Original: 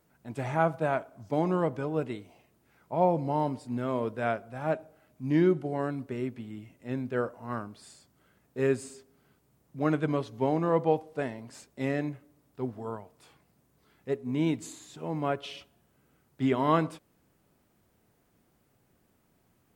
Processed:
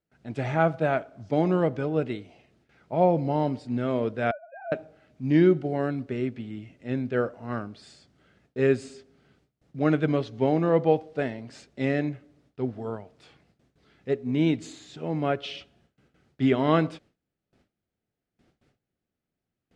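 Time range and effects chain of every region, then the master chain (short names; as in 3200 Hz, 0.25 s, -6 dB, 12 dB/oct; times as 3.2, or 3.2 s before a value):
4.31–4.72 sine-wave speech + LPF 1900 Hz 24 dB/oct + compressor 2:1, threshold -44 dBFS
whole clip: gate with hold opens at -57 dBFS; Chebyshev low-pass 4400 Hz, order 2; bell 1000 Hz -9 dB 0.42 oct; gain +5.5 dB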